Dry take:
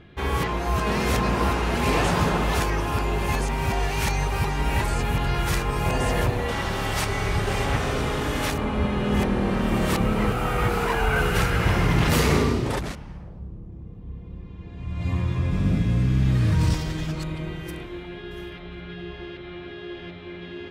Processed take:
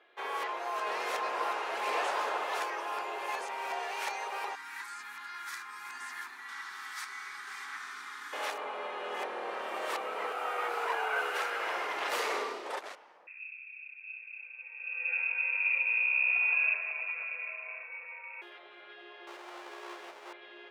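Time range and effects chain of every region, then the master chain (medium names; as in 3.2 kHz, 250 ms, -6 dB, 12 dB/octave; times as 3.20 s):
4.55–8.33 s: Chebyshev band-stop 200–1500 Hz + peaking EQ 2.8 kHz -12 dB 0.49 oct
13.27–18.42 s: comb of notches 450 Hz + frequency inversion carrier 2.6 kHz
19.27–20.33 s: square wave that keeps the level + treble shelf 9 kHz -11.5 dB
whole clip: Bessel high-pass 810 Hz, order 6; tilt EQ -3 dB/octave; trim -4 dB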